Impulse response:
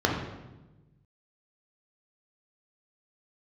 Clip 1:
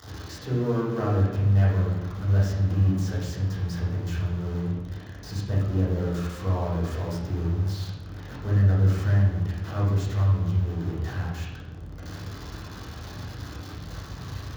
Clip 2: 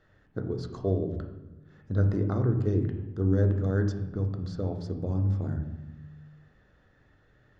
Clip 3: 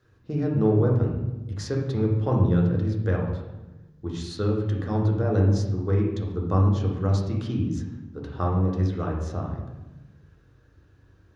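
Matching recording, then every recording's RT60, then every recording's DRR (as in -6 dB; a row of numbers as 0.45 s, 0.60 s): 3; 1.1 s, 1.1 s, 1.1 s; -7.5 dB, 4.5 dB, -1.0 dB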